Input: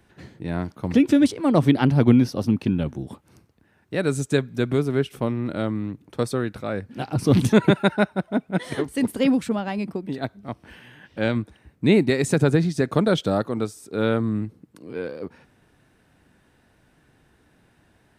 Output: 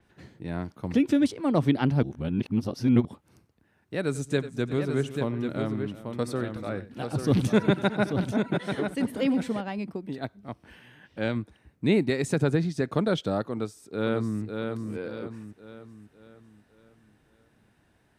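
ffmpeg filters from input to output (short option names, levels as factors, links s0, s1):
-filter_complex "[0:a]asplit=3[s0][s1][s2];[s0]afade=t=out:st=4.11:d=0.02[s3];[s1]aecho=1:1:92|370|839:0.141|0.15|0.473,afade=t=in:st=4.11:d=0.02,afade=t=out:st=9.6:d=0.02[s4];[s2]afade=t=in:st=9.6:d=0.02[s5];[s3][s4][s5]amix=inputs=3:normalize=0,asplit=2[s6][s7];[s7]afade=t=in:st=13.51:d=0.01,afade=t=out:st=14.42:d=0.01,aecho=0:1:550|1100|1650|2200|2750|3300:0.562341|0.253054|0.113874|0.0512434|0.0230595|0.0103768[s8];[s6][s8]amix=inputs=2:normalize=0,asplit=3[s9][s10][s11];[s9]atrim=end=2.032[s12];[s10]atrim=start=2.028:end=3.052,asetpts=PTS-STARTPTS,areverse[s13];[s11]atrim=start=3.048[s14];[s12][s13]acrossfade=d=0.004:c1=hsin:c2=hsin[s15];[s15][s14]acrossfade=d=0.004:c1=hsin:c2=hsin,adynamicequalizer=threshold=0.00355:dfrequency=7200:dqfactor=0.7:tfrequency=7200:tqfactor=0.7:attack=5:release=100:ratio=0.375:range=2.5:mode=cutabove:tftype=highshelf,volume=0.531"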